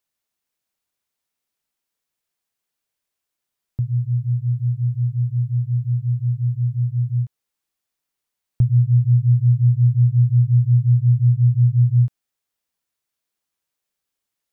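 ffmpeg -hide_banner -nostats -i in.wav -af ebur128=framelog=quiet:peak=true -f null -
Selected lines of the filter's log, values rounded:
Integrated loudness:
  I:         -18.6 LUFS
  Threshold: -28.7 LUFS
Loudness range:
  LRA:        10.0 LU
  Threshold: -40.2 LUFS
  LRA low:   -26.3 LUFS
  LRA high:  -16.3 LUFS
True peak:
  Peak:       -8.8 dBFS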